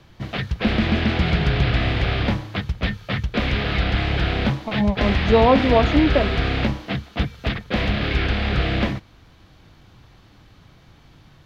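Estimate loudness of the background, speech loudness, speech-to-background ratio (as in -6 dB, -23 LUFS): -22.5 LUFS, -19.5 LUFS, 3.0 dB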